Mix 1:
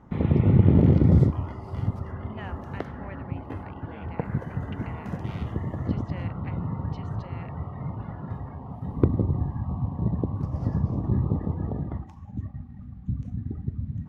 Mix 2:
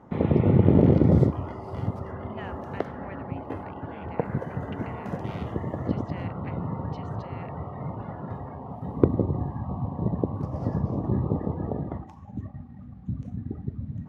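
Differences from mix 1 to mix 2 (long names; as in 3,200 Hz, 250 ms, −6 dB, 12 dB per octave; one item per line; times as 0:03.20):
background: add parametric band 550 Hz +6.5 dB 1.6 octaves
master: add high-pass filter 110 Hz 6 dB per octave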